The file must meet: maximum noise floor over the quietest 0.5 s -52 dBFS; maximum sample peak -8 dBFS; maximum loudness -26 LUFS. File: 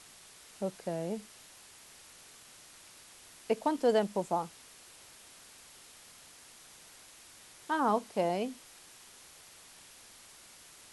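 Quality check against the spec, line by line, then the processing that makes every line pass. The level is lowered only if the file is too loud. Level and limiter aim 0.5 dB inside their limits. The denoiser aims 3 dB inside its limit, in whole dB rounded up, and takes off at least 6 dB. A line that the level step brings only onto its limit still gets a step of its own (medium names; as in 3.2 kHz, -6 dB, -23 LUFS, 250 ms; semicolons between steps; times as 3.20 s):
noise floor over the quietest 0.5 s -55 dBFS: pass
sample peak -16.5 dBFS: pass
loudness -33.0 LUFS: pass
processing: none needed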